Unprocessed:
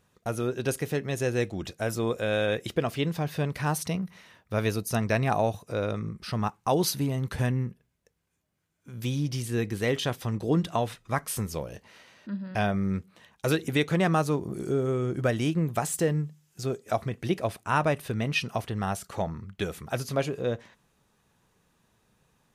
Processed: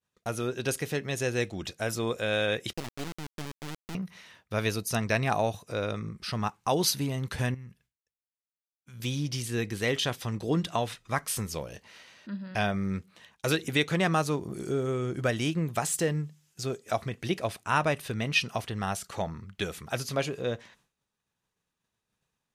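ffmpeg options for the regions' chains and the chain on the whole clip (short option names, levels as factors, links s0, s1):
-filter_complex "[0:a]asettb=1/sr,asplit=3[s0][s1][s2];[s0]atrim=end=2.734[s3];[s1]atrim=start=2.73:end=3.95,asetpts=PTS-STARTPTS,afade=t=in:d=0.004:c=qsin,afade=t=out:st=1.216:d=0.004:c=qsin,bandpass=f=240:t=q:w=1.8,acrusher=bits=3:dc=4:mix=0:aa=0.000001[s4];[s2]atrim=start=3.946[s5];[s3][s4]acrossfade=d=0.004:c1=hsin:c2=qsin[s6];[s6][s5]acrossfade=d=0.004:c1=qsin:c2=hsin,asettb=1/sr,asplit=3[s7][s8][s9];[s7]atrim=end=7.544[s10];[s8]atrim=start=7.54:end=9,asetpts=PTS-STARTPTS,afade=t=in:d=0.004:c=qsin,afade=t=out:st=1.456:d=0.004:c=qsin,equalizer=f=390:w=0.61:g=-10,acompressor=threshold=0.0158:ratio=12:attack=3.2:release=140:knee=1:detection=peak[s11];[s9]atrim=start=8.996[s12];[s10][s11]acrossfade=d=0.004:c1=hsin:c2=qsin[s13];[s13][s12]acrossfade=d=0.004:c1=qsin:c2=hsin,agate=range=0.0224:threshold=0.00141:ratio=3:detection=peak,equalizer=f=4400:w=0.34:g=6.5,volume=0.708"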